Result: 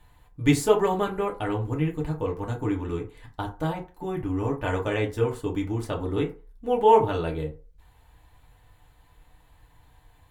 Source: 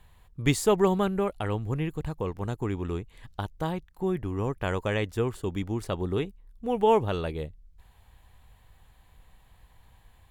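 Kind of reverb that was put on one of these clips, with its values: FDN reverb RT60 0.35 s, low-frequency decay 0.8×, high-frequency decay 0.5×, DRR -1.5 dB; trim -2 dB

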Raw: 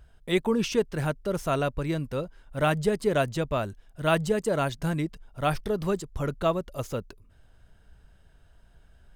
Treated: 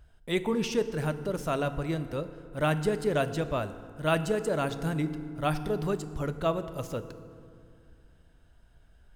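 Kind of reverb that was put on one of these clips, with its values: FDN reverb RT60 2.3 s, low-frequency decay 1.35×, high-frequency decay 0.55×, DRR 10.5 dB; trim -3 dB

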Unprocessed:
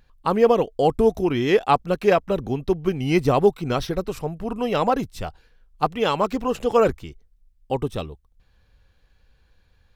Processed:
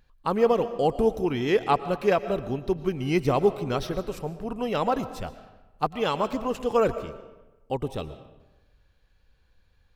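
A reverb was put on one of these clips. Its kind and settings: algorithmic reverb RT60 1.1 s, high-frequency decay 0.7×, pre-delay 80 ms, DRR 12.5 dB; trim -4.5 dB

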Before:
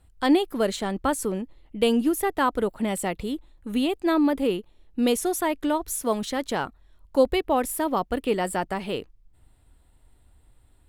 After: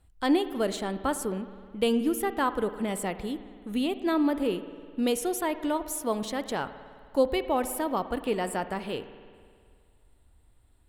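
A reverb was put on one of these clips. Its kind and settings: spring tank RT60 2 s, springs 52 ms, chirp 55 ms, DRR 12 dB; trim -4 dB

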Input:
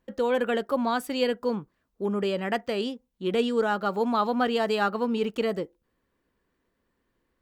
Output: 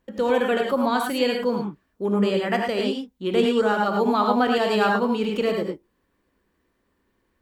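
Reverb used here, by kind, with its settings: gated-style reverb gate 130 ms rising, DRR 1 dB; trim +2.5 dB

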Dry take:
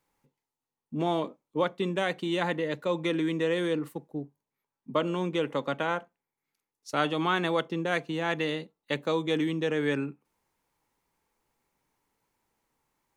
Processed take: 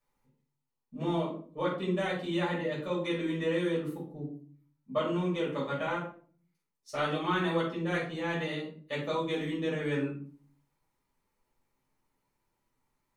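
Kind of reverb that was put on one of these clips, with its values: simulated room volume 370 m³, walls furnished, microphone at 6 m; trim -12.5 dB

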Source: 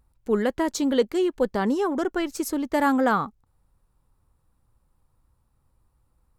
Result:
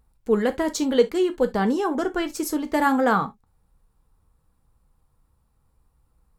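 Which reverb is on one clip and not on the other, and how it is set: gated-style reverb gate 90 ms falling, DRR 7.5 dB; trim +1 dB

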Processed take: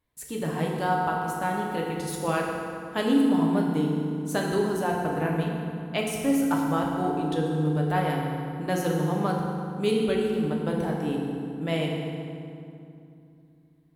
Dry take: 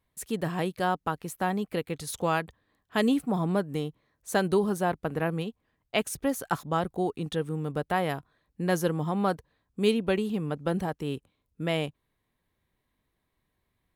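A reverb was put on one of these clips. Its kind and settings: FDN reverb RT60 2.6 s, low-frequency decay 1.45×, high-frequency decay 0.65×, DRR -2 dB; trim -3 dB

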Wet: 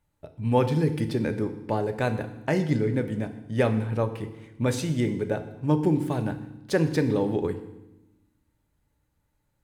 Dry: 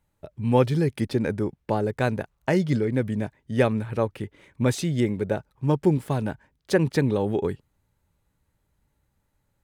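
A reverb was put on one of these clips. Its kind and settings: FDN reverb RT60 0.93 s, low-frequency decay 1.55×, high-frequency decay 1×, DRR 7.5 dB; trim -2.5 dB

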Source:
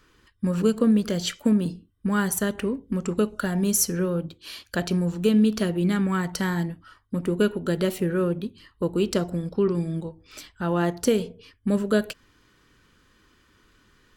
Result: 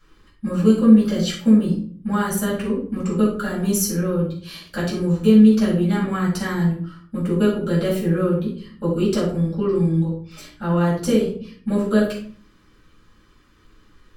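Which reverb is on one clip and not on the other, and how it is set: simulated room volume 450 m³, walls furnished, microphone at 7.6 m; trim -8.5 dB

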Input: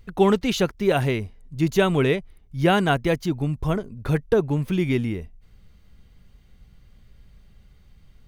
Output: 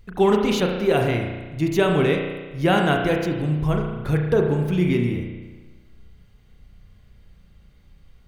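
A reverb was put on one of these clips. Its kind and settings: spring tank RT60 1.3 s, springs 33 ms, chirp 50 ms, DRR 1.5 dB; trim -1 dB

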